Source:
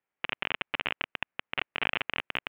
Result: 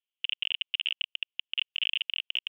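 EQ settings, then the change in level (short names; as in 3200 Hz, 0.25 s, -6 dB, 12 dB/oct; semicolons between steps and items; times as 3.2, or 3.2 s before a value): Butterworth band-pass 3100 Hz, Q 4.5; +8.5 dB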